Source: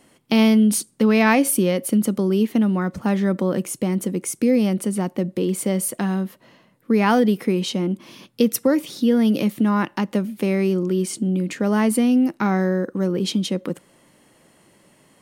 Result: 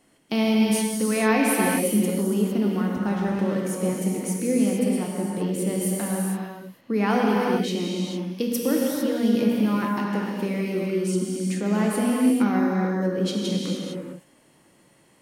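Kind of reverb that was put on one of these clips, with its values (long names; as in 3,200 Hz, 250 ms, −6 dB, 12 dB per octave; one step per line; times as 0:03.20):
reverb whose tail is shaped and stops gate 480 ms flat, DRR −3 dB
level −7.5 dB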